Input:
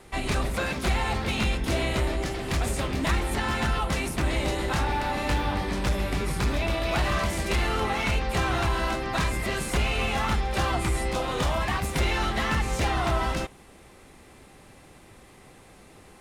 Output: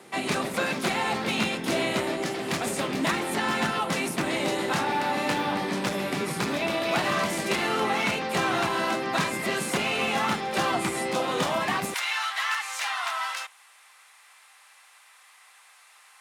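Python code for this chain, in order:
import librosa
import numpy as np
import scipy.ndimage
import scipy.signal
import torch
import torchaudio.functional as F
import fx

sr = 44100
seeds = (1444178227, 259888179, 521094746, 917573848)

y = fx.highpass(x, sr, hz=fx.steps((0.0, 160.0), (11.94, 1000.0)), slope=24)
y = y * 10.0 ** (2.0 / 20.0)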